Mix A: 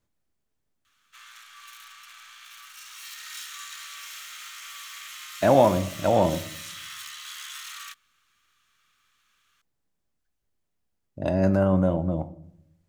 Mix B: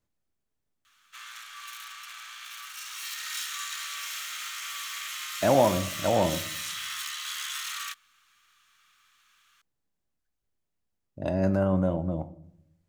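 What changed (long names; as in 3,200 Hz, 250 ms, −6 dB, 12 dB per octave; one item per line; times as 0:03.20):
speech −3.5 dB
background +4.5 dB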